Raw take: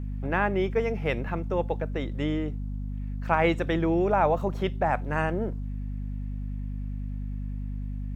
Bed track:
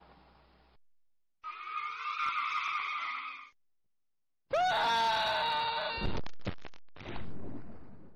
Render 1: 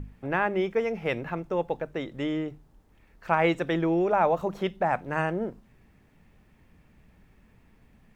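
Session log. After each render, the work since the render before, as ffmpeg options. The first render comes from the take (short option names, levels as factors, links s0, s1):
-af "bandreject=f=50:t=h:w=6,bandreject=f=100:t=h:w=6,bandreject=f=150:t=h:w=6,bandreject=f=200:t=h:w=6,bandreject=f=250:t=h:w=6"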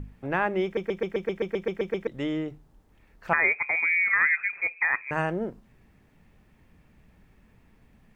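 -filter_complex "[0:a]asettb=1/sr,asplit=3[s0][s1][s2];[s0]atrim=end=3.334[s3];[s1]atrim=start=3.33:end=5.11,asetpts=PTS-STARTPTS,afade=t=in:d=0.004:c=qsin,afade=t=out:st=1.776:d=0.004:c=qsin,lowpass=f=2200:t=q:w=0.5098,lowpass=f=2200:t=q:w=0.6013,lowpass=f=2200:t=q:w=0.9,lowpass=f=2200:t=q:w=2.563,afreqshift=-2600[s4];[s2]atrim=start=5.106[s5];[s3][s4]acrossfade=d=0.004:c1=hsin:c2=qsin[s6];[s6][s5]acrossfade=d=0.004:c1=qsin:c2=hsin,asplit=12[s7][s8][s9][s10][s11][s12][s13][s14][s15][s16][s17][s18];[s7]atrim=end=0.772[s19];[s8]atrim=start=0.638:end=0.772[s20];[s9]atrim=start=0.638:end=0.772[s21];[s10]atrim=start=0.638:end=0.772[s22];[s11]atrim=start=0.638:end=0.772[s23];[s12]atrim=start=0.638:end=0.772[s24];[s13]atrim=start=0.638:end=0.772[s25];[s14]atrim=start=0.638:end=0.772[s26];[s15]atrim=start=0.638:end=0.772[s27];[s16]atrim=start=0.638:end=0.772[s28];[s17]atrim=start=0.638:end=0.772[s29];[s18]atrim=start=2.068[s30];[s19][s20]acrossfade=d=0.004:c1=hsin:c2=hsin[s31];[s31][s21]acrossfade=d=0.004:c1=hsin:c2=hsin[s32];[s32][s22]acrossfade=d=0.004:c1=hsin:c2=hsin[s33];[s33][s23]acrossfade=d=0.004:c1=hsin:c2=hsin[s34];[s34][s24]acrossfade=d=0.004:c1=hsin:c2=hsin[s35];[s35][s25]acrossfade=d=0.004:c1=hsin:c2=hsin[s36];[s36][s26]acrossfade=d=0.004:c1=hsin:c2=hsin[s37];[s37][s27]acrossfade=d=0.004:c1=hsin:c2=hsin[s38];[s38][s28]acrossfade=d=0.004:c1=hsin:c2=hsin[s39];[s39][s29]acrossfade=d=0.004:c1=hsin:c2=hsin[s40];[s40][s30]acrossfade=d=0.004:c1=hsin:c2=hsin"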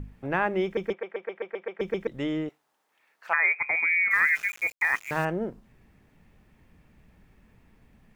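-filter_complex "[0:a]asplit=3[s0][s1][s2];[s0]afade=t=out:st=0.92:d=0.02[s3];[s1]asuperpass=centerf=1100:order=4:qfactor=0.62,afade=t=in:st=0.92:d=0.02,afade=t=out:st=1.79:d=0.02[s4];[s2]afade=t=in:st=1.79:d=0.02[s5];[s3][s4][s5]amix=inputs=3:normalize=0,asettb=1/sr,asplit=3[s6][s7][s8];[s6]atrim=end=2.494[s9];[s7]atrim=start=2.49:end=3.59,asetpts=PTS-STARTPTS,afade=t=in:d=0.004:c=qsin,afade=t=out:st=1.096:d=0.004:c=qsin,highpass=830[s10];[s8]atrim=start=3.586[s11];[s9][s10]acrossfade=d=0.004:c1=hsin:c2=qsin[s12];[s12][s11]acrossfade=d=0.004:c1=qsin:c2=hsin,asettb=1/sr,asplit=3[s13][s14][s15];[s13]atrim=end=4.114[s16];[s14]atrim=start=4.11:end=5.25,asetpts=PTS-STARTPTS,afade=t=in:d=0.004:c=qsin,afade=t=out:st=1.136:d=0.004:c=qsin,aeval=exprs='val(0)*gte(abs(val(0)),0.0126)':c=same[s17];[s15]atrim=start=5.246[s18];[s16][s17]acrossfade=d=0.004:c1=hsin:c2=qsin[s19];[s19][s18]acrossfade=d=0.004:c1=qsin:c2=hsin"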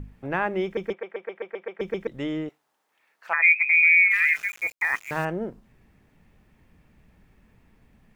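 -filter_complex "[0:a]asplit=3[s0][s1][s2];[s0]afade=t=out:st=3.41:d=0.02[s3];[s1]highpass=f=2700:t=q:w=14,afade=t=in:st=3.41:d=0.02,afade=t=out:st=4.33:d=0.02[s4];[s2]afade=t=in:st=4.33:d=0.02[s5];[s3][s4][s5]amix=inputs=3:normalize=0"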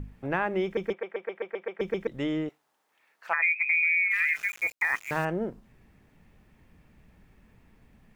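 -af "acompressor=threshold=0.0794:ratio=6"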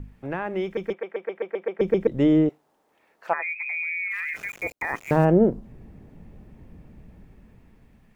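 -filter_complex "[0:a]acrossover=split=740[s0][s1];[s0]dynaudnorm=f=760:g=5:m=5.01[s2];[s1]alimiter=limit=0.0668:level=0:latency=1:release=43[s3];[s2][s3]amix=inputs=2:normalize=0"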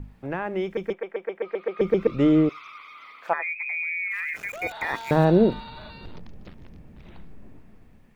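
-filter_complex "[1:a]volume=0.355[s0];[0:a][s0]amix=inputs=2:normalize=0"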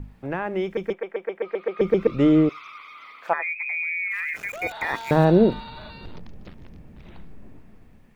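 -af "volume=1.19"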